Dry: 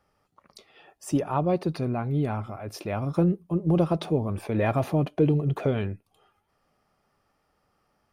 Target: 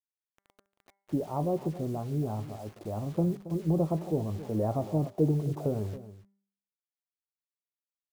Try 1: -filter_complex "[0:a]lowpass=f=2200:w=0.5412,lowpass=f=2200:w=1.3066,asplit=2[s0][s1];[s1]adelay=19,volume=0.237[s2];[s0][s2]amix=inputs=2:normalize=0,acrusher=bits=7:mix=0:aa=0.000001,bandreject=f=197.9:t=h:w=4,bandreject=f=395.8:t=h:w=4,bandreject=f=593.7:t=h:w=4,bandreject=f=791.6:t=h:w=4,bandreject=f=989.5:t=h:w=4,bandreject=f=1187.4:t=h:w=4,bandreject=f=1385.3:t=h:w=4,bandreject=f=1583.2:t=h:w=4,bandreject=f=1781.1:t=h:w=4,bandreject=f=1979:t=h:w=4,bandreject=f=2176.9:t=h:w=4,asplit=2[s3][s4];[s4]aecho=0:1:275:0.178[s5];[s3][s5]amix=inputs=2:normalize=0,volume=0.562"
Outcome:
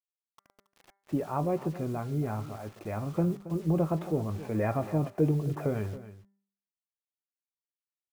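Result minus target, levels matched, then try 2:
2 kHz band +12.0 dB
-filter_complex "[0:a]lowpass=f=930:w=0.5412,lowpass=f=930:w=1.3066,asplit=2[s0][s1];[s1]adelay=19,volume=0.237[s2];[s0][s2]amix=inputs=2:normalize=0,acrusher=bits=7:mix=0:aa=0.000001,bandreject=f=197.9:t=h:w=4,bandreject=f=395.8:t=h:w=4,bandreject=f=593.7:t=h:w=4,bandreject=f=791.6:t=h:w=4,bandreject=f=989.5:t=h:w=4,bandreject=f=1187.4:t=h:w=4,bandreject=f=1385.3:t=h:w=4,bandreject=f=1583.2:t=h:w=4,bandreject=f=1781.1:t=h:w=4,bandreject=f=1979:t=h:w=4,bandreject=f=2176.9:t=h:w=4,asplit=2[s3][s4];[s4]aecho=0:1:275:0.178[s5];[s3][s5]amix=inputs=2:normalize=0,volume=0.562"

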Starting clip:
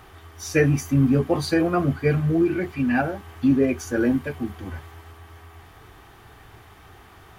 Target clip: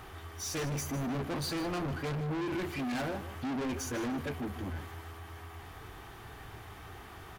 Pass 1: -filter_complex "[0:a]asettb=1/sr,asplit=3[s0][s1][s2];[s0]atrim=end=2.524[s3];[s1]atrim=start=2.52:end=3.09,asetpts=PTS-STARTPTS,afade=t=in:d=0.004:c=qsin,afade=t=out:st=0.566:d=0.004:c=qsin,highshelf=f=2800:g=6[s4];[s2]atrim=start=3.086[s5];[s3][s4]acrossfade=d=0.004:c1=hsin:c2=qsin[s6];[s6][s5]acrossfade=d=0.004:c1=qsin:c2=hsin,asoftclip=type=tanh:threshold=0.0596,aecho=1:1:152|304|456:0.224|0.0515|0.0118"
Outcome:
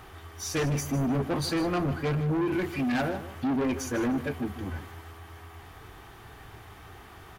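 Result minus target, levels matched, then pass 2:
saturation: distortion -4 dB
-filter_complex "[0:a]asettb=1/sr,asplit=3[s0][s1][s2];[s0]atrim=end=2.524[s3];[s1]atrim=start=2.52:end=3.09,asetpts=PTS-STARTPTS,afade=t=in:d=0.004:c=qsin,afade=t=out:st=0.566:d=0.004:c=qsin,highshelf=f=2800:g=6[s4];[s2]atrim=start=3.086[s5];[s3][s4]acrossfade=d=0.004:c1=hsin:c2=qsin[s6];[s6][s5]acrossfade=d=0.004:c1=qsin:c2=hsin,asoftclip=type=tanh:threshold=0.0224,aecho=1:1:152|304|456:0.224|0.0515|0.0118"

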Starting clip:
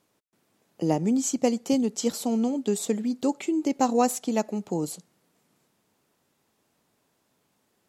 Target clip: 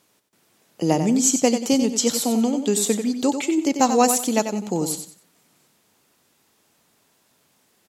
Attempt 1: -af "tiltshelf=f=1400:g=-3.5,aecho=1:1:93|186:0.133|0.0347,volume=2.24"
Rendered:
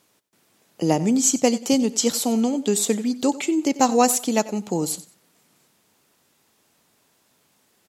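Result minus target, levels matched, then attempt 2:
echo-to-direct -9 dB
-af "tiltshelf=f=1400:g=-3.5,aecho=1:1:93|186|279:0.376|0.0977|0.0254,volume=2.24"

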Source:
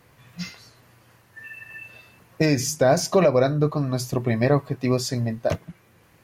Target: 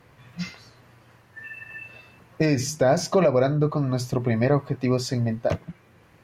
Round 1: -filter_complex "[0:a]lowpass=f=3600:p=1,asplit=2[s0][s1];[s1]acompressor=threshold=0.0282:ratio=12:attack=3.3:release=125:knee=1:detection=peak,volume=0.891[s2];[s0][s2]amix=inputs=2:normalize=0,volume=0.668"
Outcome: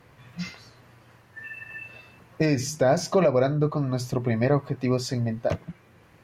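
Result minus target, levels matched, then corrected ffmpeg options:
compression: peak gain reduction +7.5 dB
-filter_complex "[0:a]lowpass=f=3600:p=1,asplit=2[s0][s1];[s1]acompressor=threshold=0.0708:ratio=12:attack=3.3:release=125:knee=1:detection=peak,volume=0.891[s2];[s0][s2]amix=inputs=2:normalize=0,volume=0.668"

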